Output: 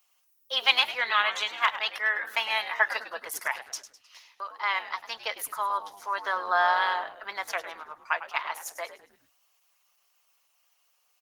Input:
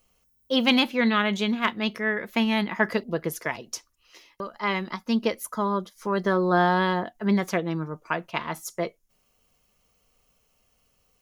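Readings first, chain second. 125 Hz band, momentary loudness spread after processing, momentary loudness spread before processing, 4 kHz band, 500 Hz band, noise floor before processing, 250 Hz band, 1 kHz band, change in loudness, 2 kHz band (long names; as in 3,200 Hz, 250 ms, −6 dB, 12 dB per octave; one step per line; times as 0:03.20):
below −35 dB, 14 LU, 11 LU, +1.5 dB, −10.5 dB, −69 dBFS, below −30 dB, 0.0 dB, −2.0 dB, +1.5 dB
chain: high-pass filter 780 Hz 24 dB per octave
on a send: echo with shifted repeats 103 ms, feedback 41%, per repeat −100 Hz, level −13 dB
on the sum: level +1.5 dB
Opus 16 kbit/s 48,000 Hz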